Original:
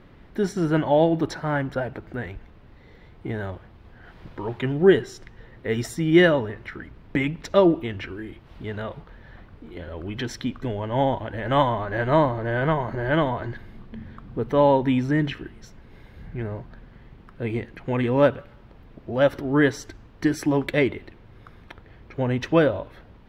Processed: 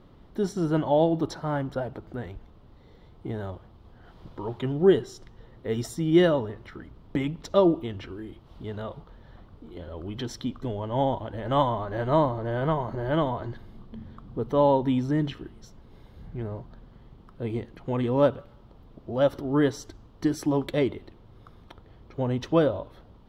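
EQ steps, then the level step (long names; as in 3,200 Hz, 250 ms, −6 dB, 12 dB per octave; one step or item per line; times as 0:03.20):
flat-topped bell 2,000 Hz −8.5 dB 1 octave
−3.0 dB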